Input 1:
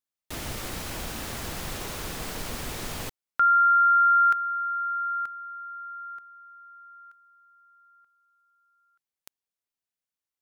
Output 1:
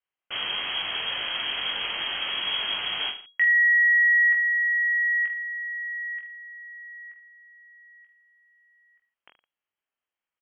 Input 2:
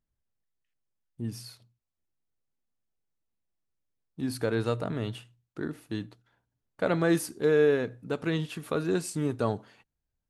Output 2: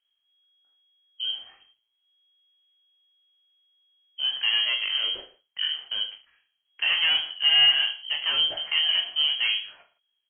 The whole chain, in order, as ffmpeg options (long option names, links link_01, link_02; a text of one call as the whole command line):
ffmpeg -i in.wav -af "aresample=16000,asoftclip=type=tanh:threshold=-23.5dB,aresample=44100,aecho=1:1:20|45|76.25|115.3|164.1:0.631|0.398|0.251|0.158|0.1,lowpass=frequency=2800:width_type=q:width=0.5098,lowpass=frequency=2800:width_type=q:width=0.6013,lowpass=frequency=2800:width_type=q:width=0.9,lowpass=frequency=2800:width_type=q:width=2.563,afreqshift=-3300,volume=4.5dB" out.wav